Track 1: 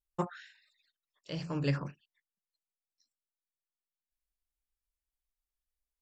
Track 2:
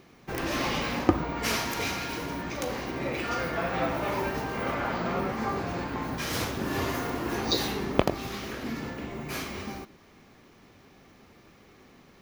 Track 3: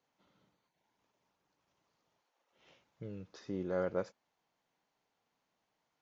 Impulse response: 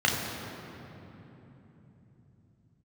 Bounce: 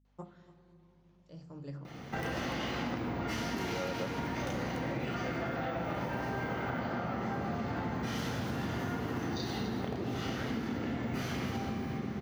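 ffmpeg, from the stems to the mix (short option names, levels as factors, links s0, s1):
-filter_complex "[0:a]equalizer=f=2700:w=0.6:g=-11,aeval=exprs='val(0)+0.00158*(sin(2*PI*50*n/s)+sin(2*PI*2*50*n/s)/2+sin(2*PI*3*50*n/s)/3+sin(2*PI*4*50*n/s)/4+sin(2*PI*5*50*n/s)/5)':c=same,volume=0.237,asplit=3[s0][s1][s2];[s1]volume=0.0794[s3];[s2]volume=0.133[s4];[1:a]acompressor=threshold=0.0126:ratio=6,adelay=1850,volume=0.891,asplit=3[s5][s6][s7];[s6]volume=0.562[s8];[s7]volume=0.447[s9];[2:a]lowpass=5200,adelay=50,volume=1.41[s10];[3:a]atrim=start_sample=2205[s11];[s3][s8]amix=inputs=2:normalize=0[s12];[s12][s11]afir=irnorm=-1:irlink=0[s13];[s4][s9]amix=inputs=2:normalize=0,aecho=0:1:291:1[s14];[s0][s5][s10][s13][s14]amix=inputs=5:normalize=0,acompressor=threshold=0.0251:ratio=6"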